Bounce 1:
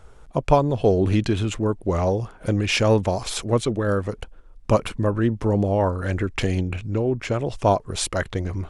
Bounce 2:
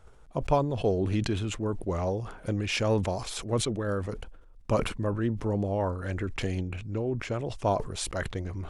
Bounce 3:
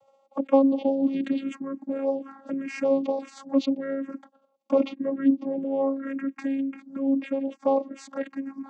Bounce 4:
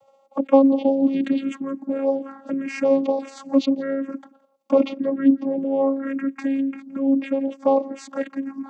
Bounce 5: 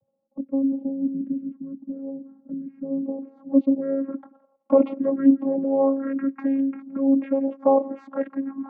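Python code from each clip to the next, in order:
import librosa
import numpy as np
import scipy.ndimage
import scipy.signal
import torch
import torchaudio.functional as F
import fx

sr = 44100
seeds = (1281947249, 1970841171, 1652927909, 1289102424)

y1 = fx.sustainer(x, sr, db_per_s=79.0)
y1 = F.gain(torch.from_numpy(y1), -8.0).numpy()
y2 = fx.high_shelf(y1, sr, hz=6300.0, db=-5.5)
y2 = fx.vocoder(y2, sr, bands=16, carrier='saw', carrier_hz=272.0)
y2 = fx.env_phaser(y2, sr, low_hz=270.0, high_hz=1600.0, full_db=-26.0)
y2 = F.gain(torch.from_numpy(y2), 6.0).numpy()
y3 = y2 + 10.0 ** (-24.0 / 20.0) * np.pad(y2, (int(169 * sr / 1000.0), 0))[:len(y2)]
y3 = F.gain(torch.from_numpy(y3), 4.5).numpy()
y4 = fx.filter_sweep_lowpass(y3, sr, from_hz=190.0, to_hz=1200.0, start_s=2.87, end_s=4.3, q=0.86)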